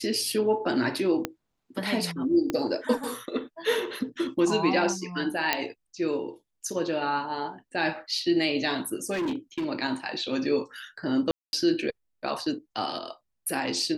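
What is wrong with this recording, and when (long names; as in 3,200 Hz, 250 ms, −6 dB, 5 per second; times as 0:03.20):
0:01.25: click −12 dBFS
0:02.50: click −14 dBFS
0:05.53: click −7 dBFS
0:09.12–0:09.66: clipping −25.5 dBFS
0:11.31–0:11.53: drop-out 221 ms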